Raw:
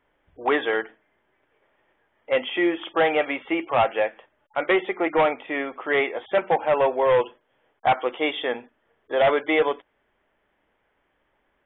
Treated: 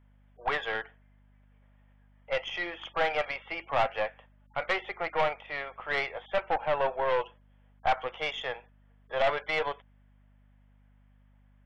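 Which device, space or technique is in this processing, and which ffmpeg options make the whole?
valve amplifier with mains hum: -af "highpass=f=530:w=0.5412,highpass=f=530:w=1.3066,aeval=exprs='(tanh(5.01*val(0)+0.65)-tanh(0.65))/5.01':c=same,aeval=exprs='val(0)+0.00141*(sin(2*PI*50*n/s)+sin(2*PI*2*50*n/s)/2+sin(2*PI*3*50*n/s)/3+sin(2*PI*4*50*n/s)/4+sin(2*PI*5*50*n/s)/5)':c=same,volume=0.75"

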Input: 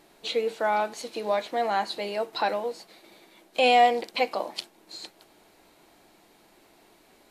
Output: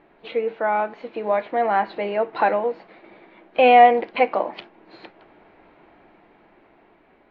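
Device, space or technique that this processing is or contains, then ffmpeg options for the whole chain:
action camera in a waterproof case: -af "lowpass=f=2400:w=0.5412,lowpass=f=2400:w=1.3066,dynaudnorm=f=470:g=7:m=1.78,volume=1.41" -ar 16000 -c:a aac -b:a 48k

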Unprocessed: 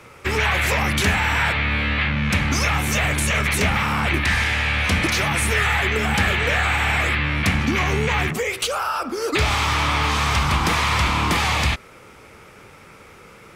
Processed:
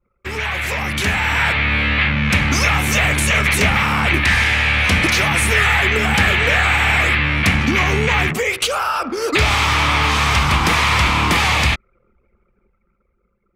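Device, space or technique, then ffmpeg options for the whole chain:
voice memo with heavy noise removal: -af "anlmdn=6.31,dynaudnorm=f=220:g=11:m=5.01,adynamicequalizer=threshold=0.0447:dfrequency=2400:dqfactor=1.3:tfrequency=2400:tqfactor=1.3:attack=5:release=100:ratio=0.375:range=1.5:mode=boostabove:tftype=bell,volume=0.596"

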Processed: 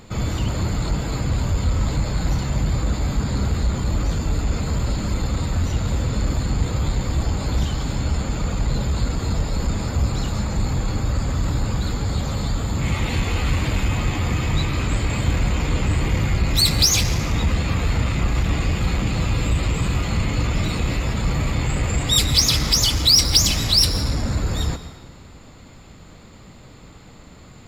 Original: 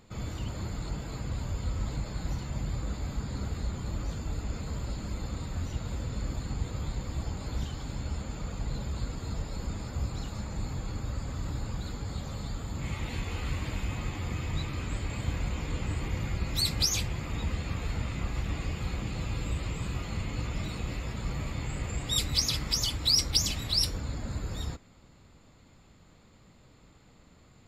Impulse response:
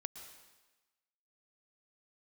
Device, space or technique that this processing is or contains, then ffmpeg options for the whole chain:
saturated reverb return: -filter_complex "[0:a]asplit=2[s0][s1];[1:a]atrim=start_sample=2205[s2];[s1][s2]afir=irnorm=-1:irlink=0,asoftclip=type=tanh:threshold=0.0251,volume=1.68[s3];[s0][s3]amix=inputs=2:normalize=0,volume=2.24"

